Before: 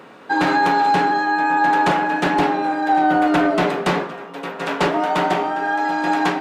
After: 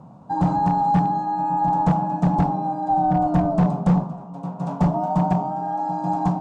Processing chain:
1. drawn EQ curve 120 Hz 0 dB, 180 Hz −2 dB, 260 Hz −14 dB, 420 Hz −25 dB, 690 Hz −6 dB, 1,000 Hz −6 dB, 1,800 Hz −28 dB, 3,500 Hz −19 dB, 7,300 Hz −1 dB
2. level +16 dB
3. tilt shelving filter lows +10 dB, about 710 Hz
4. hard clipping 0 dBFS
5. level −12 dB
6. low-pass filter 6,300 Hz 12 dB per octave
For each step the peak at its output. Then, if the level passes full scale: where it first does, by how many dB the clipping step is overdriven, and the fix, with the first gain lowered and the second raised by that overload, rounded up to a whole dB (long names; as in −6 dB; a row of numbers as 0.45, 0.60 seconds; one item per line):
−13.5, +2.5, +7.5, 0.0, −12.0, −12.0 dBFS
step 2, 7.5 dB
step 2 +8 dB, step 5 −4 dB